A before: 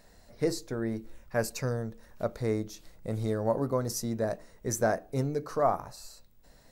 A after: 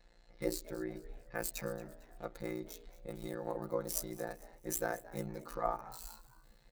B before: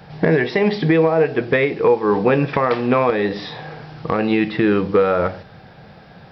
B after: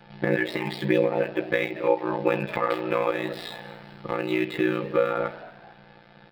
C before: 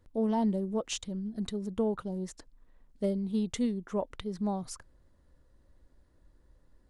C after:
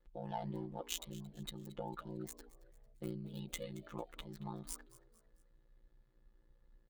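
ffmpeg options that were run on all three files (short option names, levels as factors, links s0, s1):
-filter_complex "[0:a]equalizer=f=5400:w=1.6:g=-9.5,aecho=1:1:2.4:0.45,acrossover=split=530|5300[s0][s1][s2];[s2]acrusher=bits=6:dc=4:mix=0:aa=0.000001[s3];[s0][s1][s3]amix=inputs=3:normalize=0,afftfilt=real='hypot(re,im)*cos(PI*b)':imag='0':win_size=1024:overlap=0.75,aeval=exprs='val(0)*sin(2*PI*30*n/s)':c=same,crystalizer=i=4:c=0,asplit=4[s4][s5][s6][s7];[s5]adelay=225,afreqshift=96,volume=0.119[s8];[s6]adelay=450,afreqshift=192,volume=0.0501[s9];[s7]adelay=675,afreqshift=288,volume=0.0209[s10];[s4][s8][s9][s10]amix=inputs=4:normalize=0,volume=0.668"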